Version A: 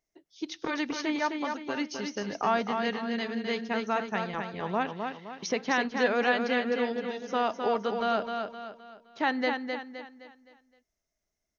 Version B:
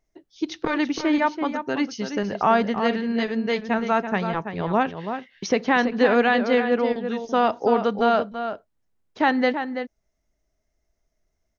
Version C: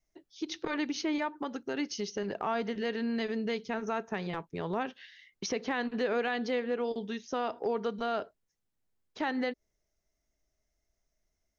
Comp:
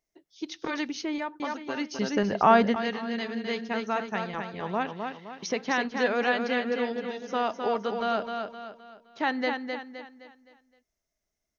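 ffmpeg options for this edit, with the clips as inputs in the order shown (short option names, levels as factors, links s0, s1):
-filter_complex "[0:a]asplit=3[s0][s1][s2];[s0]atrim=end=0.882[s3];[2:a]atrim=start=0.878:end=1.402[s4];[s1]atrim=start=1.398:end=1.992[s5];[1:a]atrim=start=1.988:end=2.762[s6];[s2]atrim=start=2.758[s7];[s3][s4]acrossfade=d=0.004:c1=hsin:c2=hsin[s8];[s8][s5]acrossfade=d=0.004:c1=hsin:c2=hsin[s9];[s9][s6]acrossfade=d=0.004:c1=hsin:c2=hsin[s10];[s10][s7]acrossfade=d=0.004:c1=hsin:c2=hsin"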